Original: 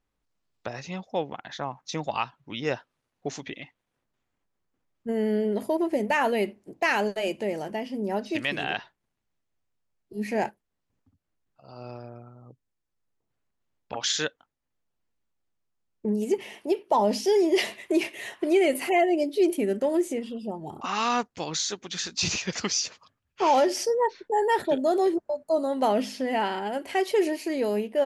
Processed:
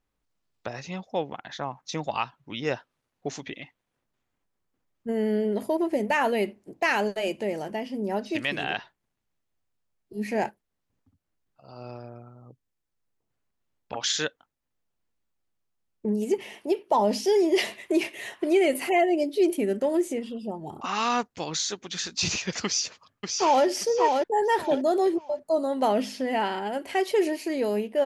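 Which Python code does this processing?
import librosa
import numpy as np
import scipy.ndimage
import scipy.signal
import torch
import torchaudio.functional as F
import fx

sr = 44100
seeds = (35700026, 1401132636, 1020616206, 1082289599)

y = fx.echo_throw(x, sr, start_s=22.65, length_s=1.0, ms=580, feedback_pct=25, wet_db=-4.0)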